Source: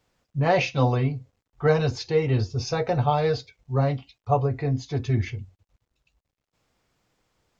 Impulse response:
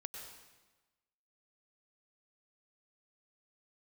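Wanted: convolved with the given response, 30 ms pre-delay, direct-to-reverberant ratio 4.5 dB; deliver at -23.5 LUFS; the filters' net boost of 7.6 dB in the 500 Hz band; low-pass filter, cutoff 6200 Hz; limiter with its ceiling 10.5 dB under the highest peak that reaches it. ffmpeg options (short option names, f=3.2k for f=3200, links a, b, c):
-filter_complex "[0:a]lowpass=6.2k,equalizer=f=500:t=o:g=8.5,alimiter=limit=-13.5dB:level=0:latency=1,asplit=2[a][b];[1:a]atrim=start_sample=2205,adelay=30[c];[b][c]afir=irnorm=-1:irlink=0,volume=-2dB[d];[a][d]amix=inputs=2:normalize=0,volume=-0.5dB"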